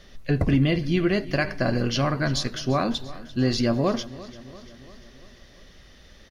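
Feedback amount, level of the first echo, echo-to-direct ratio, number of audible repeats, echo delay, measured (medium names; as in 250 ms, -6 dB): 59%, -18.0 dB, -16.0 dB, 4, 344 ms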